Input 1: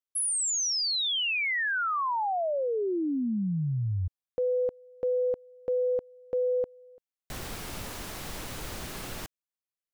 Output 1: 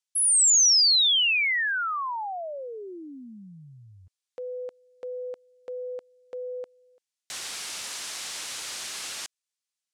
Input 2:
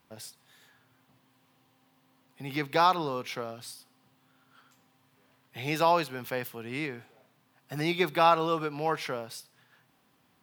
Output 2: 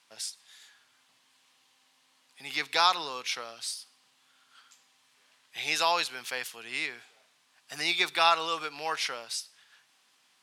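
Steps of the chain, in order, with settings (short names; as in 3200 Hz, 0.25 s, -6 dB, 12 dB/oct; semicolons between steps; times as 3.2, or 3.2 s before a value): weighting filter ITU-R 468; gain -2 dB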